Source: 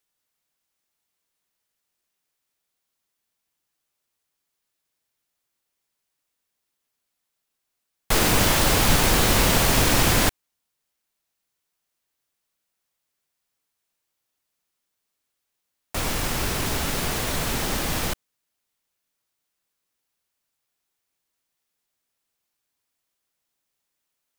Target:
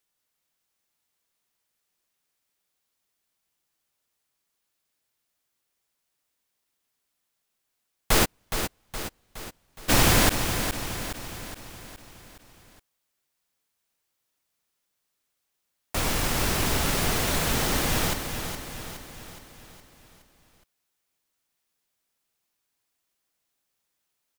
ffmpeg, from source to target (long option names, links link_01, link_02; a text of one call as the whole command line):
ffmpeg -i in.wav -filter_complex "[0:a]asplit=3[link_01][link_02][link_03];[link_01]afade=type=out:start_time=8.24:duration=0.02[link_04];[link_02]agate=range=-49dB:threshold=-6dB:ratio=16:detection=peak,afade=type=in:start_time=8.24:duration=0.02,afade=type=out:start_time=9.88:duration=0.02[link_05];[link_03]afade=type=in:start_time=9.88:duration=0.02[link_06];[link_04][link_05][link_06]amix=inputs=3:normalize=0,aecho=1:1:417|834|1251|1668|2085|2502:0.398|0.211|0.112|0.0593|0.0314|0.0166" out.wav